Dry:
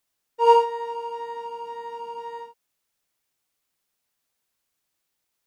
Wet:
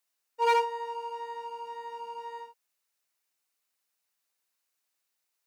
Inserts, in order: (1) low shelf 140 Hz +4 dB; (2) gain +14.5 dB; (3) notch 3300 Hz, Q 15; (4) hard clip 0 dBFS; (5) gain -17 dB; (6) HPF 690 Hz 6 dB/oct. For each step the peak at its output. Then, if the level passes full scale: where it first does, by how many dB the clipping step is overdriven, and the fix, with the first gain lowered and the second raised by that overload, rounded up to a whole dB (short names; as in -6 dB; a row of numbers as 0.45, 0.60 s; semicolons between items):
-4.5, +10.0, +10.0, 0.0, -17.0, -14.0 dBFS; step 2, 10.0 dB; step 2 +4.5 dB, step 5 -7 dB